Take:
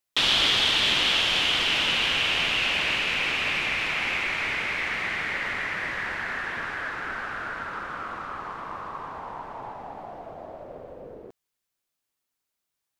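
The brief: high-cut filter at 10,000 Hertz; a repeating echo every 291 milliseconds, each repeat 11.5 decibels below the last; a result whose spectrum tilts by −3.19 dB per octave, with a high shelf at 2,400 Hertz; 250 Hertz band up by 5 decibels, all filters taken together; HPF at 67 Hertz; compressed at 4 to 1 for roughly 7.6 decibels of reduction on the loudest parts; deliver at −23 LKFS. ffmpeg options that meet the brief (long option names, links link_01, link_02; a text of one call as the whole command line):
ffmpeg -i in.wav -af "highpass=67,lowpass=10000,equalizer=frequency=250:width_type=o:gain=6.5,highshelf=frequency=2400:gain=-6,acompressor=threshold=-31dB:ratio=4,aecho=1:1:291|582|873:0.266|0.0718|0.0194,volume=10dB" out.wav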